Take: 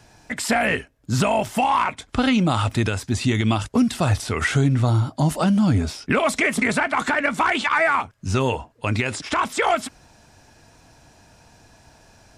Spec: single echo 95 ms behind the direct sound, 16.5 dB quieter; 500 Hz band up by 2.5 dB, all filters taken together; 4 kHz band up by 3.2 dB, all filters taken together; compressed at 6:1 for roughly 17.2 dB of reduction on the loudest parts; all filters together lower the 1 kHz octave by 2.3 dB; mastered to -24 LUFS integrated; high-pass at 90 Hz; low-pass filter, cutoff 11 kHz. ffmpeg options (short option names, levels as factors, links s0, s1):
-af "highpass=90,lowpass=11000,equalizer=f=500:t=o:g=5,equalizer=f=1000:t=o:g=-5,equalizer=f=4000:t=o:g=4.5,acompressor=threshold=0.02:ratio=6,aecho=1:1:95:0.15,volume=4.22"